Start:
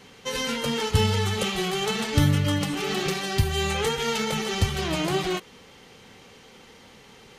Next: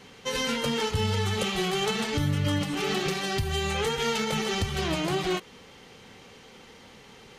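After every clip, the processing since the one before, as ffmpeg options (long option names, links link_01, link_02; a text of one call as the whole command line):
ffmpeg -i in.wav -af "highshelf=frequency=9200:gain=-4,alimiter=limit=-17dB:level=0:latency=1:release=157" out.wav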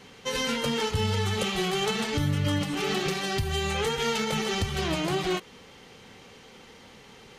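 ffmpeg -i in.wav -af anull out.wav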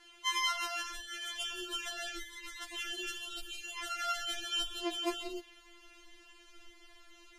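ffmpeg -i in.wav -af "asubboost=boost=6:cutoff=63,afftfilt=real='re*4*eq(mod(b,16),0)':imag='im*4*eq(mod(b,16),0)':win_size=2048:overlap=0.75,volume=-5.5dB" out.wav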